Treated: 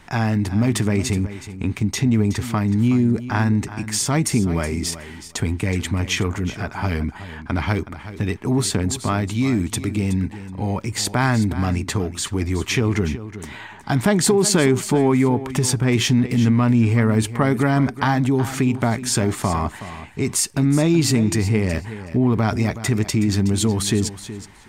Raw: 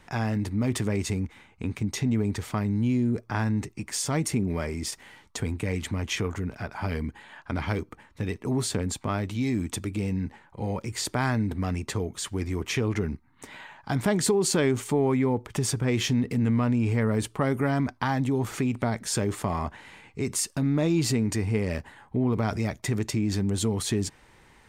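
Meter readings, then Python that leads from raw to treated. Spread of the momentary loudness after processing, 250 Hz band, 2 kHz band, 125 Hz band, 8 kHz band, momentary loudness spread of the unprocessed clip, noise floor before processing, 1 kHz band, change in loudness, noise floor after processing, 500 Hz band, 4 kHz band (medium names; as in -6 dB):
10 LU, +7.5 dB, +7.5 dB, +7.5 dB, +7.5 dB, 10 LU, -58 dBFS, +7.5 dB, +7.5 dB, -39 dBFS, +6.0 dB, +7.5 dB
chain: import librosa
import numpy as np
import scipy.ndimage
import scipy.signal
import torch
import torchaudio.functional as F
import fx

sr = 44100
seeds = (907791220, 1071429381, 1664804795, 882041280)

y = fx.peak_eq(x, sr, hz=500.0, db=-6.5, octaves=0.32)
y = fx.echo_feedback(y, sr, ms=371, feedback_pct=15, wet_db=-13.5)
y = F.gain(torch.from_numpy(y), 7.5).numpy()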